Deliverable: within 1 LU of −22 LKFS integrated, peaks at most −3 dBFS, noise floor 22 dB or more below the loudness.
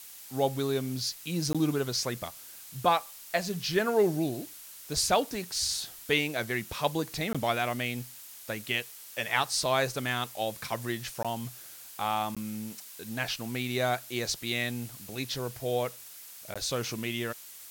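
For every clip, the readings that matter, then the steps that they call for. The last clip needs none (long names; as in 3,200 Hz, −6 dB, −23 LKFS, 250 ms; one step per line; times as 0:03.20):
number of dropouts 5; longest dropout 16 ms; background noise floor −48 dBFS; target noise floor −53 dBFS; integrated loudness −31.0 LKFS; sample peak −11.0 dBFS; target loudness −22.0 LKFS
→ repair the gap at 0:01.53/0:07.33/0:11.23/0:12.35/0:16.54, 16 ms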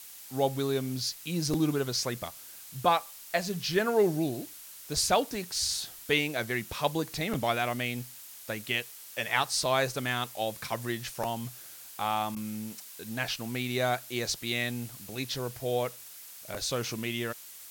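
number of dropouts 0; background noise floor −48 dBFS; target noise floor −53 dBFS
→ noise reduction from a noise print 6 dB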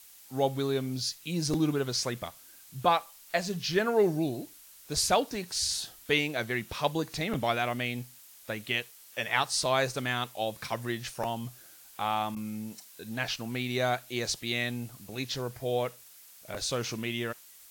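background noise floor −54 dBFS; integrated loudness −31.0 LKFS; sample peak −11.0 dBFS; target loudness −22.0 LKFS
→ level +9 dB
brickwall limiter −3 dBFS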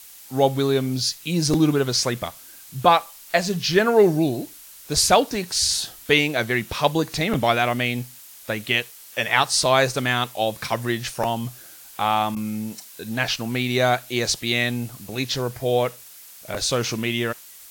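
integrated loudness −22.0 LKFS; sample peak −3.0 dBFS; background noise floor −45 dBFS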